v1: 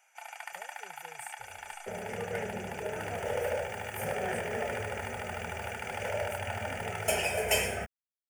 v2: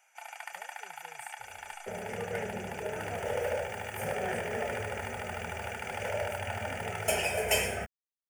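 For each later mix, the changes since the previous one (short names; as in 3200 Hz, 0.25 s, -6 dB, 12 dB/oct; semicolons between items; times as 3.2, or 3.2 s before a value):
speech -3.5 dB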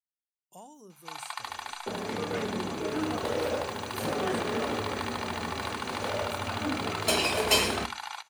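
speech: remove fixed phaser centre 870 Hz, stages 6; first sound: entry +0.90 s; master: remove fixed phaser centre 1100 Hz, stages 6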